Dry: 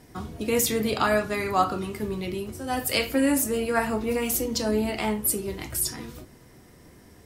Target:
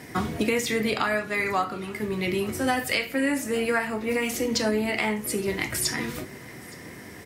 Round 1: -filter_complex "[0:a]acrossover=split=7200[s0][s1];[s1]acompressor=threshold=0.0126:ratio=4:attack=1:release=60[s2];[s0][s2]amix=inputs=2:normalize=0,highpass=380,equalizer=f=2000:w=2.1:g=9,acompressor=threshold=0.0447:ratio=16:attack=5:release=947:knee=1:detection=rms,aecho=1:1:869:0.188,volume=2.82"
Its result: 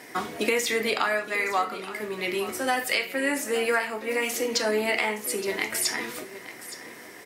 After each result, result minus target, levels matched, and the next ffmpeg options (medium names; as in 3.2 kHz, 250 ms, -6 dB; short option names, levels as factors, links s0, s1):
125 Hz band -12.0 dB; echo-to-direct +8.5 dB
-filter_complex "[0:a]acrossover=split=7200[s0][s1];[s1]acompressor=threshold=0.0126:ratio=4:attack=1:release=60[s2];[s0][s2]amix=inputs=2:normalize=0,highpass=110,equalizer=f=2000:w=2.1:g=9,acompressor=threshold=0.0447:ratio=16:attack=5:release=947:knee=1:detection=rms,aecho=1:1:869:0.188,volume=2.82"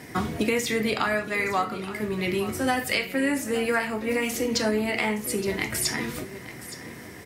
echo-to-direct +8.5 dB
-filter_complex "[0:a]acrossover=split=7200[s0][s1];[s1]acompressor=threshold=0.0126:ratio=4:attack=1:release=60[s2];[s0][s2]amix=inputs=2:normalize=0,highpass=110,equalizer=f=2000:w=2.1:g=9,acompressor=threshold=0.0447:ratio=16:attack=5:release=947:knee=1:detection=rms,aecho=1:1:869:0.0708,volume=2.82"